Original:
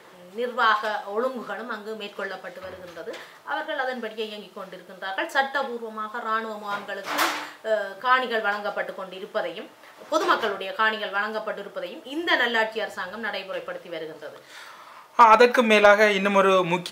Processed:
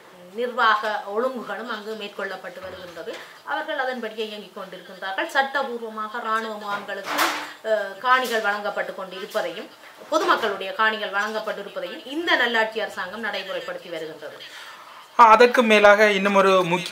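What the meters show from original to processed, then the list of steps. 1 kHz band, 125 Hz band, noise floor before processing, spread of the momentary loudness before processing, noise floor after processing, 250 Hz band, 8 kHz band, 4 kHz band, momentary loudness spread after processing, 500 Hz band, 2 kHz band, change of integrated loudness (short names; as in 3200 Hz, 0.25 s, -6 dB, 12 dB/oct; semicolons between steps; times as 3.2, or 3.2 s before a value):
+2.0 dB, n/a, -49 dBFS, 21 LU, -45 dBFS, +2.0 dB, +3.0 dB, +2.5 dB, 21 LU, +2.0 dB, +2.0 dB, +2.0 dB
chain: thin delay 1.063 s, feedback 45%, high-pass 3800 Hz, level -6 dB; gain +2 dB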